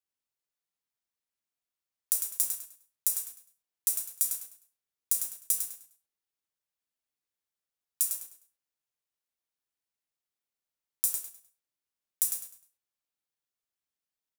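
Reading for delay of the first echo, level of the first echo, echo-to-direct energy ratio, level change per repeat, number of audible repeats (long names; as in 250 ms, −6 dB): 102 ms, −6.5 dB, −6.0 dB, −11.0 dB, 3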